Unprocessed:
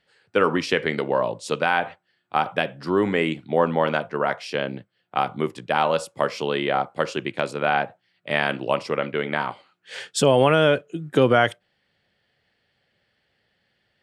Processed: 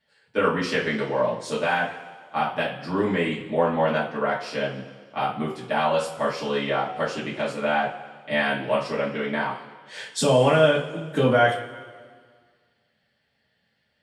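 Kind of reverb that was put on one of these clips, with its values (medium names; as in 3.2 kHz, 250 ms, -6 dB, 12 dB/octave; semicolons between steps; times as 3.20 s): two-slope reverb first 0.31 s, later 1.8 s, from -18 dB, DRR -8.5 dB; trim -10.5 dB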